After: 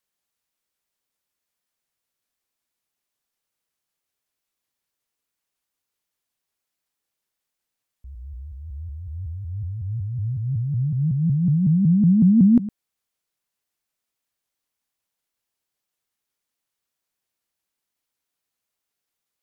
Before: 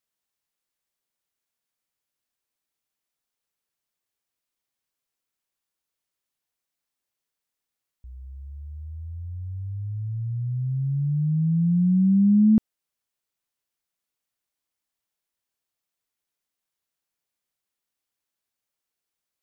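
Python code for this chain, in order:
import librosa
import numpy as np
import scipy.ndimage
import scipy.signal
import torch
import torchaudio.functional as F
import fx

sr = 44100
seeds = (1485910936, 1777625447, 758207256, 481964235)

y = x + 10.0 ** (-15.0 / 20.0) * np.pad(x, (int(106 * sr / 1000.0), 0))[:len(x)]
y = fx.vibrato_shape(y, sr, shape='saw_up', rate_hz=5.4, depth_cents=250.0)
y = F.gain(torch.from_numpy(y), 2.5).numpy()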